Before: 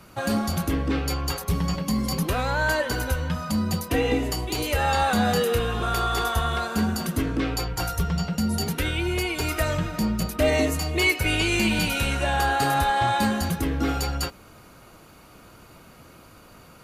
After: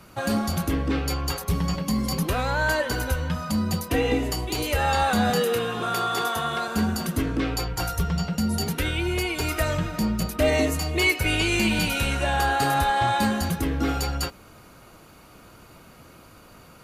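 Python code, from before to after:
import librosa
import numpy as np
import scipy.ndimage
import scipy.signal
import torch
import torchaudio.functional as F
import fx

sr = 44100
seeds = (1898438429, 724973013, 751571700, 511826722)

y = fx.highpass(x, sr, hz=130.0, slope=24, at=(5.3, 6.68))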